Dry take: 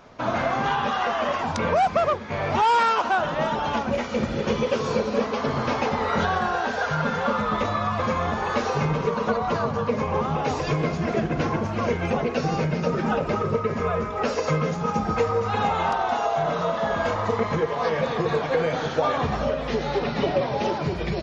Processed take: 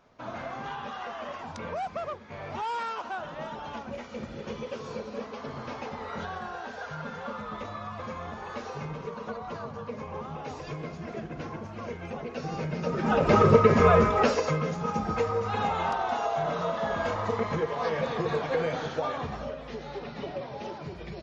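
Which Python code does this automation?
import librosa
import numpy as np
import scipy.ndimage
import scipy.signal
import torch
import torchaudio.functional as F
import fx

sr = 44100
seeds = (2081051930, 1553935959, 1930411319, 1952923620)

y = fx.gain(x, sr, db=fx.line((12.15, -13.0), (12.97, -5.0), (13.38, 6.0), (14.08, 6.0), (14.54, -5.0), (18.68, -5.0), (19.67, -13.0)))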